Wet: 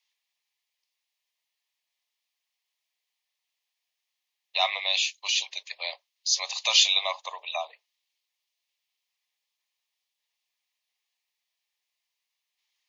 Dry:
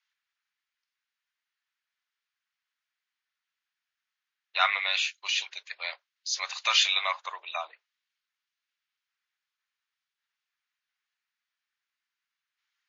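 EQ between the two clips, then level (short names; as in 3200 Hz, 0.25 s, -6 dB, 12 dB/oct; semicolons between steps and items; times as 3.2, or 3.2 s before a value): HPF 450 Hz; dynamic EQ 1700 Hz, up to -7 dB, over -39 dBFS, Q 1.1; fixed phaser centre 600 Hz, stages 4; +7.5 dB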